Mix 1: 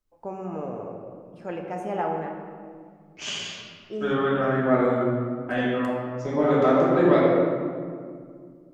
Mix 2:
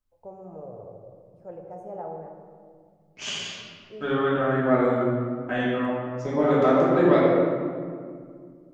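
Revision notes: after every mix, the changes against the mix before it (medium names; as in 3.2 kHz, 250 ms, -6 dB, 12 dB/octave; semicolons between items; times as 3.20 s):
first voice: add FFT filter 110 Hz 0 dB, 260 Hz -17 dB, 540 Hz -4 dB, 2.8 kHz -29 dB, 6.6 kHz -17 dB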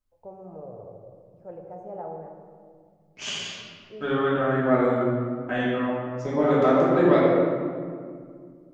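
first voice: add distance through air 110 m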